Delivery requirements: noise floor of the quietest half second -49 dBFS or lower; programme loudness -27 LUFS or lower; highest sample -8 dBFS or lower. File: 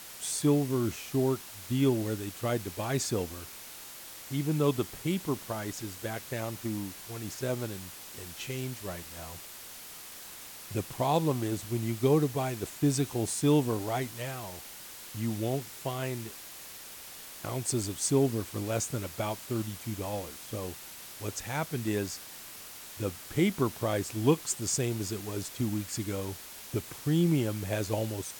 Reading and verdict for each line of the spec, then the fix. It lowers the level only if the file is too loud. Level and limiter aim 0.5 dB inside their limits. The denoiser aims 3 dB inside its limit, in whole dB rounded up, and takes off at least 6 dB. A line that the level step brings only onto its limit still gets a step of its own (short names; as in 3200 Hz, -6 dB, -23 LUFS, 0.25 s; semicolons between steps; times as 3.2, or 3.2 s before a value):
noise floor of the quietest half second -46 dBFS: fail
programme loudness -32.0 LUFS: OK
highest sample -13.0 dBFS: OK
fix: denoiser 6 dB, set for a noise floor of -46 dBFS